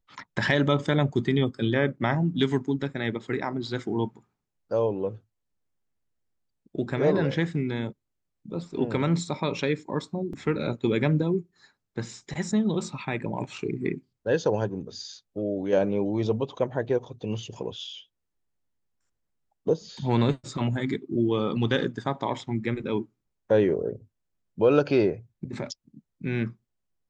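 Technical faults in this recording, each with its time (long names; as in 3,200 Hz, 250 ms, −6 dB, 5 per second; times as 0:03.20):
0:10.33: drop-out 3.8 ms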